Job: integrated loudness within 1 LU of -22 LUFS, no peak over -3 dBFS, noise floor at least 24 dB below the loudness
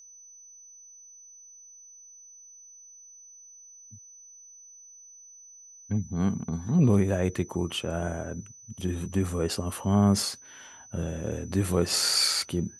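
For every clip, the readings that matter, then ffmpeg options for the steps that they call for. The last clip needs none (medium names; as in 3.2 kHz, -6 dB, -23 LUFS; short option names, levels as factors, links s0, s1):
steady tone 6 kHz; tone level -48 dBFS; loudness -27.0 LUFS; peak level -10.0 dBFS; loudness target -22.0 LUFS
-> -af "bandreject=f=6000:w=30"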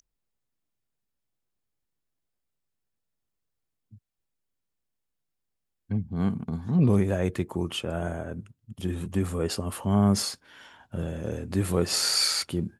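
steady tone not found; loudness -27.0 LUFS; peak level -10.0 dBFS; loudness target -22.0 LUFS
-> -af "volume=1.78"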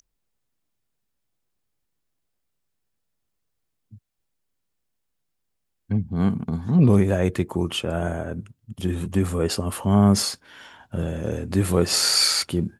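loudness -22.0 LUFS; peak level -5.0 dBFS; noise floor -77 dBFS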